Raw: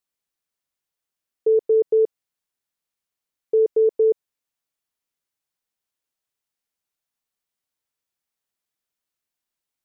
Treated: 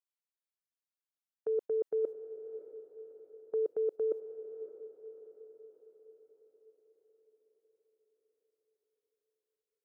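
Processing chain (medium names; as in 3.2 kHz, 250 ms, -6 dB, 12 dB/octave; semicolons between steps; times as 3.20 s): gate -26 dBFS, range -15 dB; bass shelf 220 Hz -12 dB; peak limiter -18.5 dBFS, peak gain reduction 3.5 dB; reverse; compression, threshold -30 dBFS, peak gain reduction 9 dB; reverse; echo that smears into a reverb 611 ms, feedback 53%, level -12 dB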